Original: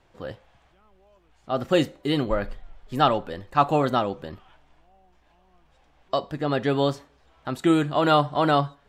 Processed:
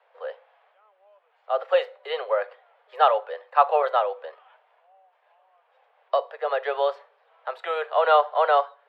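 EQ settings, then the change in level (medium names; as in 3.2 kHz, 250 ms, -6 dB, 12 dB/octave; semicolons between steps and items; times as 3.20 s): steep high-pass 450 Hz 96 dB/octave; distance through air 420 m; +4.0 dB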